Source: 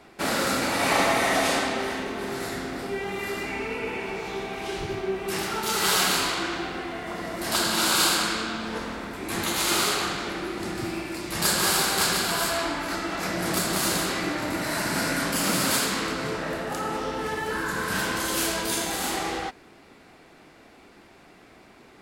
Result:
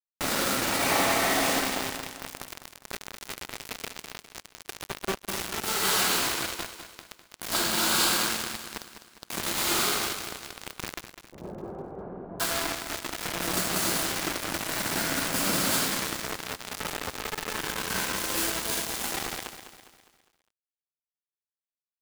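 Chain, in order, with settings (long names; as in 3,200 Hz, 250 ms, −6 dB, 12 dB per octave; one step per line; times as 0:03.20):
bit reduction 4 bits
0:11.07–0:12.40: transistor ladder low-pass 780 Hz, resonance 20%
repeating echo 203 ms, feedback 46%, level −10.5 dB
level −3.5 dB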